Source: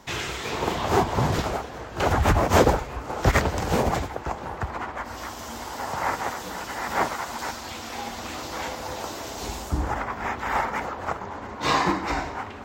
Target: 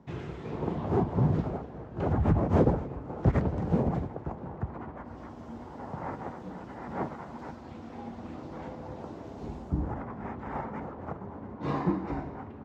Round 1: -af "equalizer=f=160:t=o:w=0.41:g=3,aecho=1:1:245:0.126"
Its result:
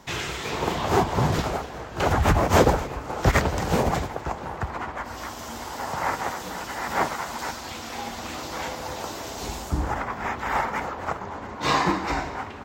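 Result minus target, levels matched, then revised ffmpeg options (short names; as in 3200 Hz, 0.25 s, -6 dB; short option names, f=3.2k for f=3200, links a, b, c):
125 Hz band -4.0 dB
-af "bandpass=f=170:t=q:w=0.76:csg=0,equalizer=f=160:t=o:w=0.41:g=3,aecho=1:1:245:0.126"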